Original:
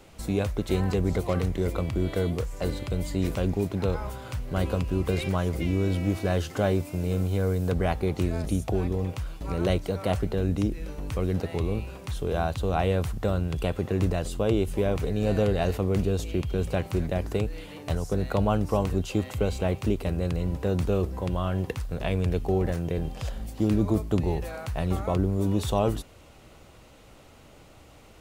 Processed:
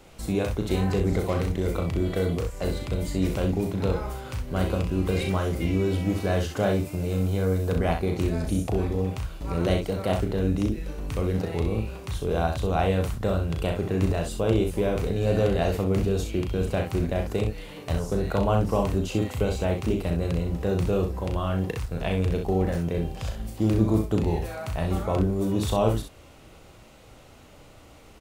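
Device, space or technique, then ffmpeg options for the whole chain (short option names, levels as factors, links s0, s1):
slapback doubling: -filter_complex "[0:a]asplit=3[s0][s1][s2];[s1]adelay=36,volume=0.501[s3];[s2]adelay=64,volume=0.447[s4];[s0][s3][s4]amix=inputs=3:normalize=0"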